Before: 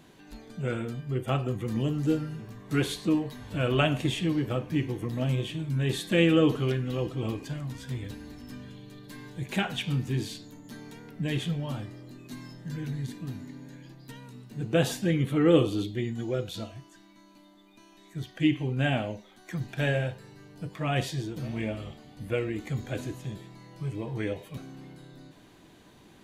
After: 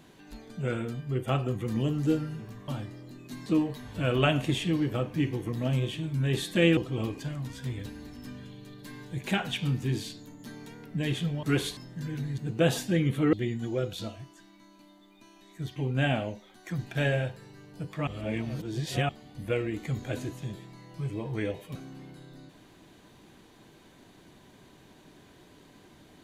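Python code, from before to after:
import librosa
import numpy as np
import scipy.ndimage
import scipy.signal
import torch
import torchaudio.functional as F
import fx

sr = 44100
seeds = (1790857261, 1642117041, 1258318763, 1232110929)

y = fx.edit(x, sr, fx.swap(start_s=2.68, length_s=0.34, other_s=11.68, other_length_s=0.78),
    fx.cut(start_s=6.33, length_s=0.69),
    fx.cut(start_s=13.07, length_s=1.45),
    fx.cut(start_s=15.47, length_s=0.42),
    fx.cut(start_s=18.32, length_s=0.26),
    fx.reverse_span(start_s=20.89, length_s=1.02), tone=tone)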